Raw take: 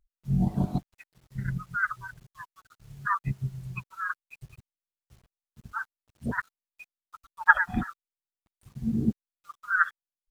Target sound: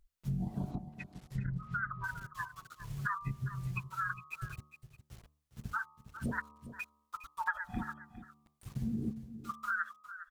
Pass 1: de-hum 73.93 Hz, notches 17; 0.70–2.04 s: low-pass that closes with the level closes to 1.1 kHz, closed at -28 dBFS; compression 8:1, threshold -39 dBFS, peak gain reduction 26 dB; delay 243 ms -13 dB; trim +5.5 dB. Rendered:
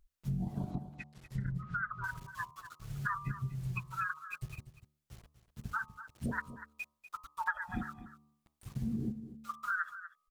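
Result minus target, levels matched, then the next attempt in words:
echo 165 ms early
de-hum 73.93 Hz, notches 17; 0.70–2.04 s: low-pass that closes with the level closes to 1.1 kHz, closed at -28 dBFS; compression 8:1, threshold -39 dBFS, peak gain reduction 26 dB; delay 408 ms -13 dB; trim +5.5 dB

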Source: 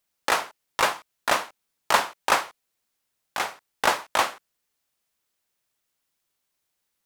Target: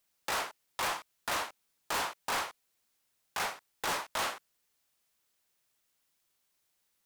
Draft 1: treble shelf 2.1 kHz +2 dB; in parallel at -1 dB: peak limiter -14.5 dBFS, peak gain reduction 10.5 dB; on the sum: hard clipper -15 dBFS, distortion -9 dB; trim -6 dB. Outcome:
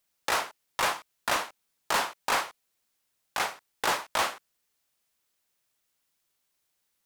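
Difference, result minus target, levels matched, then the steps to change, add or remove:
hard clipper: distortion -6 dB
change: hard clipper -24 dBFS, distortion -3 dB

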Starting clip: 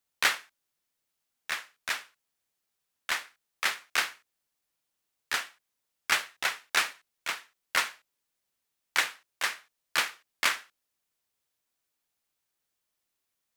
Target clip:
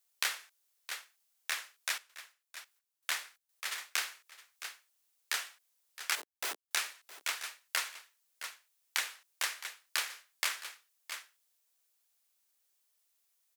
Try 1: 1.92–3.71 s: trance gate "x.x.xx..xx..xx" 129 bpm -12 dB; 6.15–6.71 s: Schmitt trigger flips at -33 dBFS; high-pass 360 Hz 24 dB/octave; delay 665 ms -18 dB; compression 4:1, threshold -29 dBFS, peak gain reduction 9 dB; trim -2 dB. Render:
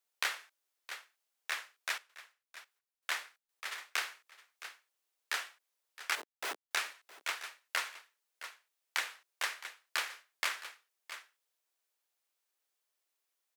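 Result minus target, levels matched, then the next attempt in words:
8 kHz band -4.0 dB
1.92–3.71 s: trance gate "x.x.xx..xx..xx" 129 bpm -12 dB; 6.15–6.71 s: Schmitt trigger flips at -33 dBFS; high-pass 360 Hz 24 dB/octave; treble shelf 3.8 kHz +10 dB; delay 665 ms -18 dB; compression 4:1, threshold -29 dBFS, peak gain reduction 11.5 dB; trim -2 dB

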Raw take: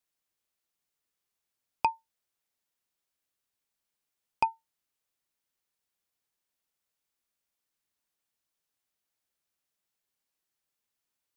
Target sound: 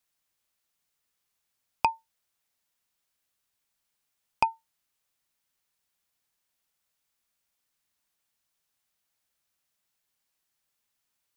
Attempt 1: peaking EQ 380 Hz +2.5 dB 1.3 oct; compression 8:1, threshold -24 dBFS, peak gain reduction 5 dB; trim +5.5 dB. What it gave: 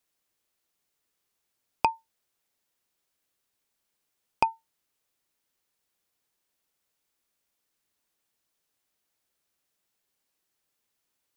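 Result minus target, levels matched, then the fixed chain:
500 Hz band +3.5 dB
peaking EQ 380 Hz -4.5 dB 1.3 oct; compression 8:1, threshold -24 dBFS, peak gain reduction 3.5 dB; trim +5.5 dB

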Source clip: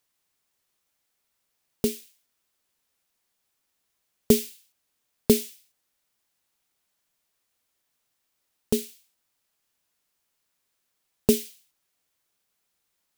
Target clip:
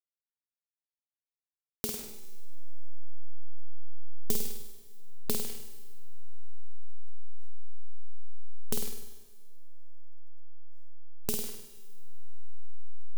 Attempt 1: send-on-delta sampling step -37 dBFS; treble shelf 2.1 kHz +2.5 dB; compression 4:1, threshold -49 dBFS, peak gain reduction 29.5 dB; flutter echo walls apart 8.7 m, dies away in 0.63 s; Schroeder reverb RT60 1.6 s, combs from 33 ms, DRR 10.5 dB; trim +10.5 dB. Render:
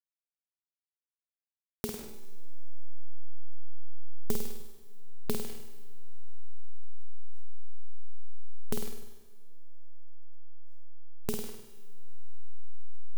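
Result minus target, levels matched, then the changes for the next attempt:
2 kHz band +3.0 dB
change: treble shelf 2.1 kHz +12.5 dB

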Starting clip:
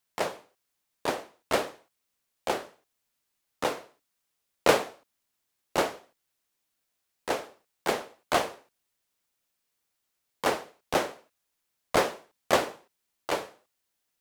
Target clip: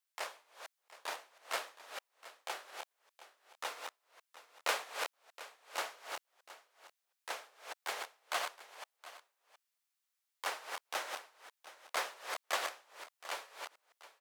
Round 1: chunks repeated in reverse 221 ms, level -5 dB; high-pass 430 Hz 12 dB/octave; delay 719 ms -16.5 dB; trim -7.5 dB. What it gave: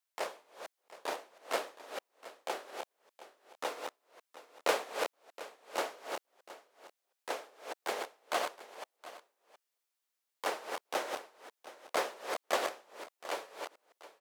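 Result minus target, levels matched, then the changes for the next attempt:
500 Hz band +6.0 dB
change: high-pass 1 kHz 12 dB/octave

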